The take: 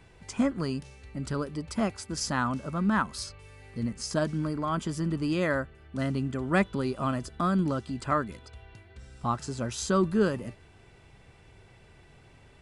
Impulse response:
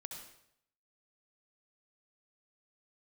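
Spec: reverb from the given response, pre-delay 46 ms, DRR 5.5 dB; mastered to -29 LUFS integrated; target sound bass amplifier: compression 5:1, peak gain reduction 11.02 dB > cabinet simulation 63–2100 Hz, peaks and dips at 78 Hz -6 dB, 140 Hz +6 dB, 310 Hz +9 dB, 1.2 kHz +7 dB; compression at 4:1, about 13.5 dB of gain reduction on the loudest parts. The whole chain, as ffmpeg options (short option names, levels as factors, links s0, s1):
-filter_complex "[0:a]acompressor=threshold=0.0158:ratio=4,asplit=2[s0][s1];[1:a]atrim=start_sample=2205,adelay=46[s2];[s1][s2]afir=irnorm=-1:irlink=0,volume=0.794[s3];[s0][s3]amix=inputs=2:normalize=0,acompressor=threshold=0.00794:ratio=5,highpass=f=63:w=0.5412,highpass=f=63:w=1.3066,equalizer=f=78:t=q:w=4:g=-6,equalizer=f=140:t=q:w=4:g=6,equalizer=f=310:t=q:w=4:g=9,equalizer=f=1200:t=q:w=4:g=7,lowpass=f=2100:w=0.5412,lowpass=f=2100:w=1.3066,volume=5.01"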